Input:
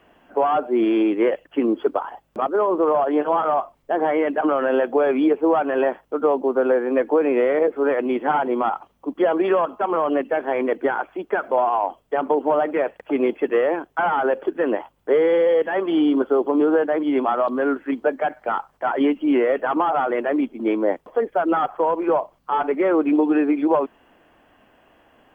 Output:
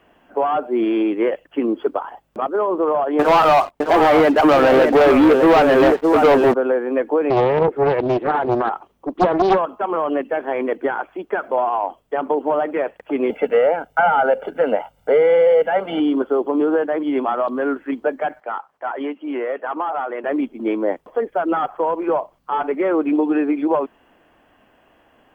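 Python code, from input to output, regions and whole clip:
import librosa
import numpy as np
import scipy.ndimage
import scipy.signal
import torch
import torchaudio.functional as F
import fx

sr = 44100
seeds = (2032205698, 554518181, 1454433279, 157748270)

y = fx.chain(x, sr, fx.echo_single(ms=611, db=-7.5),
    fx.leveller(passes=3), at=(3.19, 6.54))
y = fx.chain(y, sr, fx.peak_eq(hz=380.0, db=6.5, octaves=0.58),
    fx.doppler_dist(depth_ms=0.75), at=(7.3, 9.59))
y = fx.chain(y, sr, fx.peak_eq(hz=430.0, db=6.5, octaves=0.45),
    fx.comb(ms=1.4, depth=0.93),
    fx.band_squash(depth_pct=40), at=(13.3, 16.0))
y = fx.chain(y, sr, fx.highpass(hz=660.0, slope=6),
    fx.high_shelf(hz=2900.0, db=-10.5), at=(18.4, 20.24))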